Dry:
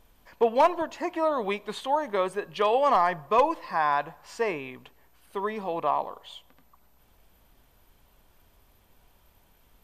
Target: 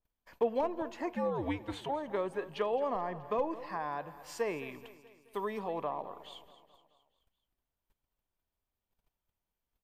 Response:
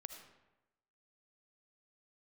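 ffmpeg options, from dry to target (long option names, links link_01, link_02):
-filter_complex "[0:a]asplit=3[link_01][link_02][link_03];[link_01]afade=type=out:start_time=1.13:duration=0.02[link_04];[link_02]afreqshift=-110,afade=type=in:start_time=1.13:duration=0.02,afade=type=out:start_time=1.88:duration=0.02[link_05];[link_03]afade=type=in:start_time=1.88:duration=0.02[link_06];[link_04][link_05][link_06]amix=inputs=3:normalize=0,agate=range=-24dB:threshold=-54dB:ratio=16:detection=peak,acrossover=split=530[link_07][link_08];[link_08]acompressor=threshold=-32dB:ratio=10[link_09];[link_07][link_09]amix=inputs=2:normalize=0,asettb=1/sr,asplit=3[link_10][link_11][link_12];[link_10]atrim=end=3.804[link_13];[link_11]atrim=start=3.8:end=5.59,asetpts=PTS-STARTPTS,afade=type=in:duration=0.004:curve=qsin,afade=type=out:start_time=1.786:duration=0.004:curve=qsin,highshelf=frequency=7400:gain=11.5[link_14];[link_12]atrim=start=5.586[link_15];[link_13][link_14]acrossfade=duration=0.004:curve1=hsin:curve2=qsin[link_16];[link_16][link_15]acrossfade=duration=0.004:curve1=qsin:curve2=hsin,aecho=1:1:214|428|642|856|1070:0.158|0.084|0.0445|0.0236|0.0125,adynamicequalizer=threshold=0.00282:dfrequency=3000:dqfactor=0.7:tfrequency=3000:tqfactor=0.7:attack=5:release=100:ratio=0.375:range=3:mode=cutabove:tftype=highshelf,volume=-4.5dB"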